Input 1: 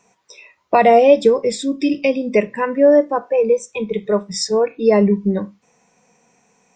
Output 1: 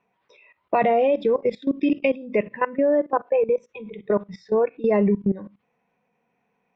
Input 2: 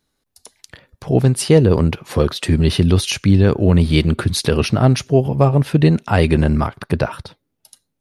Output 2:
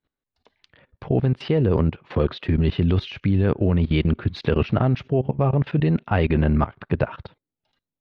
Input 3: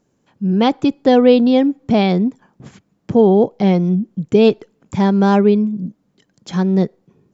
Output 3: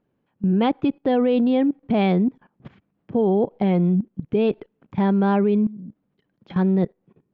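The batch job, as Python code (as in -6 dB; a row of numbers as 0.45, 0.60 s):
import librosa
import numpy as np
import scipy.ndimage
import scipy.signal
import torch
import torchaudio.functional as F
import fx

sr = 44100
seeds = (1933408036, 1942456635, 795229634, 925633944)

y = scipy.signal.sosfilt(scipy.signal.butter(4, 3200.0, 'lowpass', fs=sr, output='sos'), x)
y = fx.level_steps(y, sr, step_db=18)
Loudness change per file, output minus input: -6.5, -6.0, -6.0 LU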